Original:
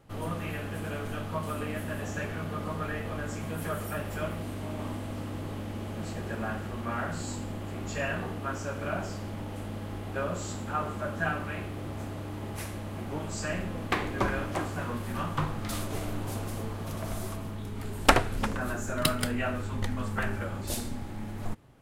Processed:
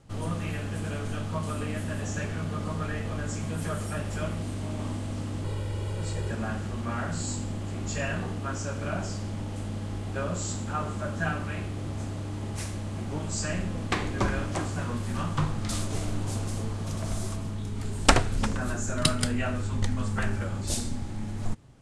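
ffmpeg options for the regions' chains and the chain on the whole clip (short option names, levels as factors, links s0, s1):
-filter_complex "[0:a]asettb=1/sr,asplit=3[s0][s1][s2];[s0]atrim=end=5.444[s3];[s1]atrim=start=5.44:end=6.31,asetpts=PTS-STARTPTS,afade=t=in:d=0.004:c=qsin,afade=t=out:st=0.866:d=0.004:c=qsin,equalizer=f=6000:t=o:w=0.32:g=-5.5,aecho=1:1:2.1:0.74,atrim=end_sample=38367[s4];[s2]atrim=start=6.306[s5];[s3][s4]acrossfade=d=0.004:c1=hsin:c2=qsin[s6];[s6][s5]acrossfade=d=0.004:c1=qsin:c2=hsin,lowpass=f=8900:w=0.5412,lowpass=f=8900:w=1.3066,bass=f=250:g=6,treble=f=4000:g=9,volume=0.891"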